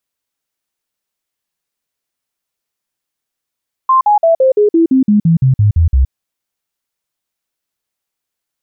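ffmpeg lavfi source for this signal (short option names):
-f lavfi -i "aevalsrc='0.501*clip(min(mod(t,0.17),0.12-mod(t,0.17))/0.005,0,1)*sin(2*PI*1050*pow(2,-floor(t/0.17)/3)*mod(t,0.17))':d=2.21:s=44100"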